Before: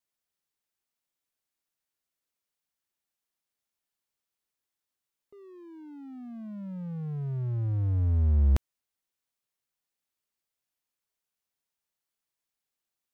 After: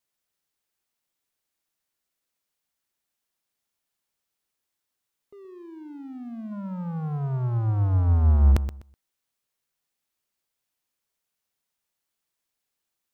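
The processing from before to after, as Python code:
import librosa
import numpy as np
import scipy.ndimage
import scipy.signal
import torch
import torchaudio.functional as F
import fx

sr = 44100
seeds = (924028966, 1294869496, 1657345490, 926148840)

y = fx.band_shelf(x, sr, hz=990.0, db=11.5, octaves=1.3, at=(6.51, 8.51), fade=0.02)
y = fx.echo_feedback(y, sr, ms=125, feedback_pct=20, wet_db=-11.5)
y = y * 10.0 ** (4.5 / 20.0)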